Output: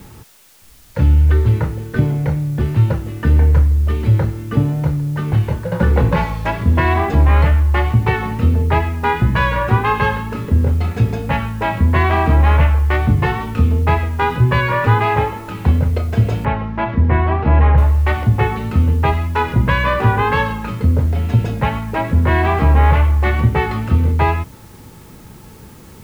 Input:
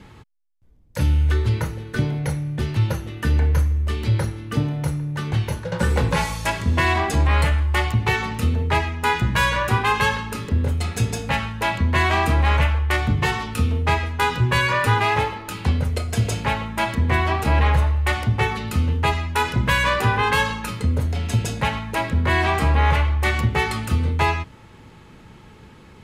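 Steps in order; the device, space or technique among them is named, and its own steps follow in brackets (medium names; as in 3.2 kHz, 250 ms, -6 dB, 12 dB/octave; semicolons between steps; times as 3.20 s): cassette deck with a dirty head (tape spacing loss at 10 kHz 35 dB; wow and flutter 27 cents; white noise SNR 34 dB); 16.45–17.78 s: distance through air 260 m; trim +7 dB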